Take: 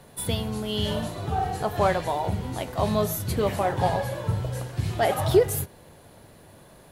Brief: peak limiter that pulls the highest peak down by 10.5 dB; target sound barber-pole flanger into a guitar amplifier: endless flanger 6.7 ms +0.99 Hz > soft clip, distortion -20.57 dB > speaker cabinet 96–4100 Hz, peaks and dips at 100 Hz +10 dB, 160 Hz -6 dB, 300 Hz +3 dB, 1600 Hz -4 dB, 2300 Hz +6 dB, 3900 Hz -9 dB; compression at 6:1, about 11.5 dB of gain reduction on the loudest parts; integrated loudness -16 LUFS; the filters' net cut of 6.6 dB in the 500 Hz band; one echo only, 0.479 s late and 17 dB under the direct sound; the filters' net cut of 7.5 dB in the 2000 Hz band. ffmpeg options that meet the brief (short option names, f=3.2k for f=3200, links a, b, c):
-filter_complex "[0:a]equalizer=f=500:t=o:g=-8.5,equalizer=f=2k:t=o:g=-8.5,acompressor=threshold=-31dB:ratio=6,alimiter=level_in=8dB:limit=-24dB:level=0:latency=1,volume=-8dB,aecho=1:1:479:0.141,asplit=2[a][b];[b]adelay=6.7,afreqshift=0.99[c];[a][c]amix=inputs=2:normalize=1,asoftclip=threshold=-35dB,highpass=96,equalizer=f=100:t=q:w=4:g=10,equalizer=f=160:t=q:w=4:g=-6,equalizer=f=300:t=q:w=4:g=3,equalizer=f=1.6k:t=q:w=4:g=-4,equalizer=f=2.3k:t=q:w=4:g=6,equalizer=f=3.9k:t=q:w=4:g=-9,lowpass=f=4.1k:w=0.5412,lowpass=f=4.1k:w=1.3066,volume=28.5dB"